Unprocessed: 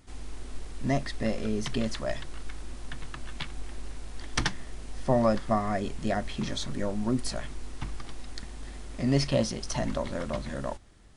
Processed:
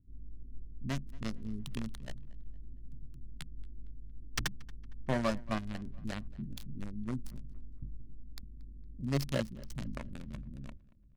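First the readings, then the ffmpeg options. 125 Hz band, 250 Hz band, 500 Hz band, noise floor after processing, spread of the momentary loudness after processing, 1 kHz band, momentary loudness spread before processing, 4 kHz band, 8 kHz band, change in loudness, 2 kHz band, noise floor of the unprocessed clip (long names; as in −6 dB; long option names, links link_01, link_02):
−6.5 dB, −9.0 dB, −11.5 dB, −51 dBFS, 19 LU, −11.0 dB, 18 LU, −9.5 dB, −10.0 dB, −9.0 dB, −7.5 dB, −43 dBFS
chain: -filter_complex "[0:a]equalizer=frequency=780:width_type=o:width=0.38:gain=-9.5,acrossover=split=270[link_01][link_02];[link_02]acrusher=bits=3:mix=0:aa=0.5[link_03];[link_01][link_03]amix=inputs=2:normalize=0,asplit=2[link_04][link_05];[link_05]adelay=230,lowpass=frequency=4000:poles=1,volume=-22dB,asplit=2[link_06][link_07];[link_07]adelay=230,lowpass=frequency=4000:poles=1,volume=0.44,asplit=2[link_08][link_09];[link_09]adelay=230,lowpass=frequency=4000:poles=1,volume=0.44[link_10];[link_04][link_06][link_08][link_10]amix=inputs=4:normalize=0,volume=-6.5dB"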